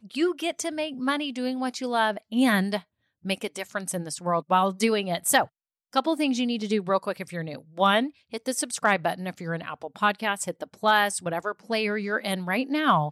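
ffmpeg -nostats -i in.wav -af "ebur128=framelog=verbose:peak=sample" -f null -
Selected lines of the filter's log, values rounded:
Integrated loudness:
  I:         -26.2 LUFS
  Threshold: -36.3 LUFS
Loudness range:
  LRA:         1.8 LU
  Threshold: -46.4 LUFS
  LRA low:   -27.2 LUFS
  LRA high:  -25.4 LUFS
Sample peak:
  Peak:       -9.8 dBFS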